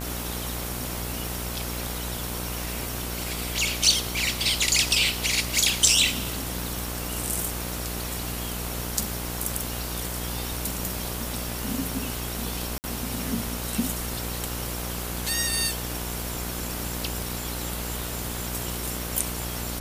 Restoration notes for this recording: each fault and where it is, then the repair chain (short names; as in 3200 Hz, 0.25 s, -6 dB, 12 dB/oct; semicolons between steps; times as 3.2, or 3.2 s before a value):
buzz 60 Hz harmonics 26 -34 dBFS
12.78–12.84 gap 59 ms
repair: de-hum 60 Hz, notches 26; interpolate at 12.78, 59 ms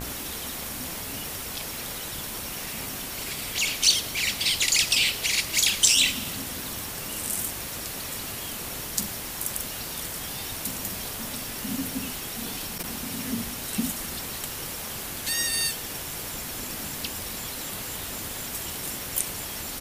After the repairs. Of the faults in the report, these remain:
none